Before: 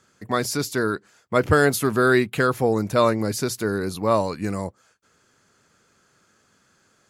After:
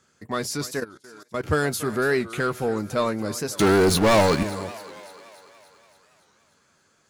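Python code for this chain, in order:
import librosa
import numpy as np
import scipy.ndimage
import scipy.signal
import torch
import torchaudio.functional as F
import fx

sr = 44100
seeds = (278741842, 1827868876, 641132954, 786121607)

p1 = fx.leveller(x, sr, passes=5, at=(3.6, 4.43))
p2 = fx.peak_eq(p1, sr, hz=13000.0, db=-5.5, octaves=0.52)
p3 = 10.0 ** (-23.0 / 20.0) * np.tanh(p2 / 10.0 ** (-23.0 / 20.0))
p4 = p2 + (p3 * 10.0 ** (-5.5 / 20.0))
p5 = fx.high_shelf(p4, sr, hz=5100.0, db=3.0)
p6 = fx.doubler(p5, sr, ms=13.0, db=-11)
p7 = p6 + fx.echo_thinned(p6, sr, ms=286, feedback_pct=62, hz=310.0, wet_db=-15.5, dry=0)
p8 = fx.level_steps(p7, sr, step_db=19, at=(0.8, 1.43), fade=0.02)
p9 = fx.record_warp(p8, sr, rpm=45.0, depth_cents=160.0)
y = p9 * 10.0 ** (-7.0 / 20.0)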